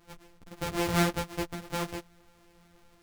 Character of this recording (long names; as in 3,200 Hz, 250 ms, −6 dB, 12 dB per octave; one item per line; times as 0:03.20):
a buzz of ramps at a fixed pitch in blocks of 256 samples
a shimmering, thickened sound